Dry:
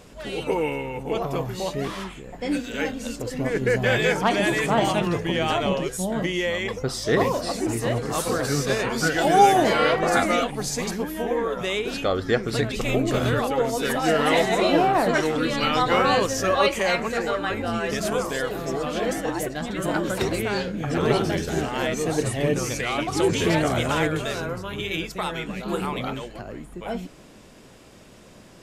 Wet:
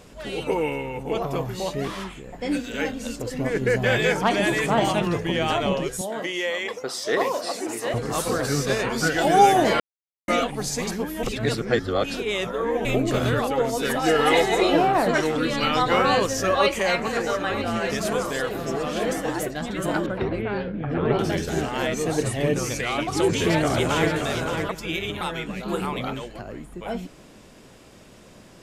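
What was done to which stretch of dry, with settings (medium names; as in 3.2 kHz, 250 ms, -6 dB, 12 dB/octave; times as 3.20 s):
6.01–7.94 s: high-pass 390 Hz
9.80–10.28 s: mute
11.23–12.85 s: reverse
14.06–14.74 s: comb 2.4 ms, depth 55%
16.10–19.51 s: delay 951 ms -12 dB
20.06–21.19 s: distance through air 450 m
23.06–24.10 s: echo throw 570 ms, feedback 15%, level -6 dB
24.69–25.21 s: reverse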